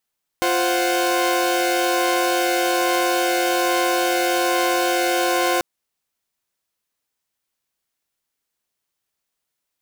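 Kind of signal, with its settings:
held notes F4/C5/F#5 saw, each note −19.5 dBFS 5.19 s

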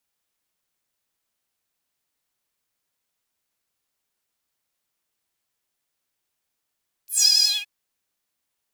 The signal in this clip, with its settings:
subtractive patch with vibrato G#5, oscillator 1 saw, interval +19 semitones, filter highpass, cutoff 2,500 Hz, Q 8.7, filter envelope 2.5 octaves, filter decay 0.16 s, attack 131 ms, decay 0.09 s, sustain −4.5 dB, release 0.20 s, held 0.37 s, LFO 11 Hz, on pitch 41 cents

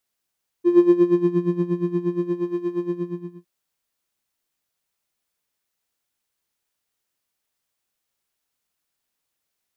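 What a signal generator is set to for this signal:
subtractive patch with tremolo F4, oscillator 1 square, interval −12 semitones, detune 5 cents, oscillator 2 level −10 dB, sub −19.5 dB, filter bandpass, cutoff 150 Hz, Q 2.8, filter envelope 1 octave, filter decay 0.76 s, attack 72 ms, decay 1.06 s, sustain −5.5 dB, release 0.60 s, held 2.21 s, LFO 8.5 Hz, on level 15 dB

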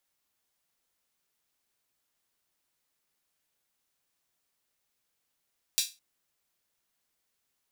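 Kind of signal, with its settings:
open synth hi-hat length 0.21 s, high-pass 3,800 Hz, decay 0.26 s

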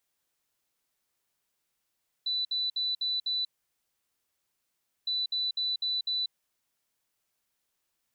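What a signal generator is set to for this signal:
beeps in groups sine 3,980 Hz, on 0.19 s, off 0.06 s, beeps 5, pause 1.62 s, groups 2, −27 dBFS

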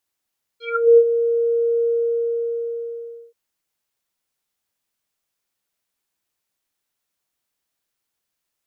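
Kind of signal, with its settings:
subtractive voice square A#4 24 dB per octave, low-pass 550 Hz, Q 7.7, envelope 3 octaves, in 0.28 s, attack 375 ms, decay 0.06 s, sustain −10 dB, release 1.49 s, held 1.24 s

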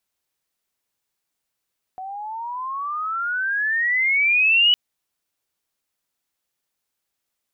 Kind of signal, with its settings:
pitch glide with a swell sine, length 2.76 s, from 743 Hz, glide +24 semitones, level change +18 dB, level −12 dB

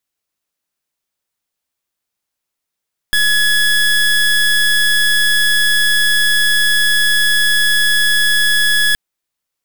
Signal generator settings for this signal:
pulse wave 1,690 Hz, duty 26% −12.5 dBFS 5.82 s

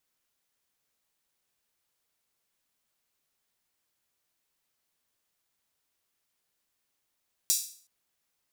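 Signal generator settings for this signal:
open synth hi-hat length 0.37 s, high-pass 5,600 Hz, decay 0.47 s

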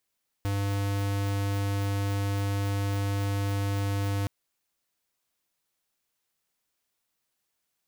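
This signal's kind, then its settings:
tone square 99.8 Hz −28 dBFS 3.82 s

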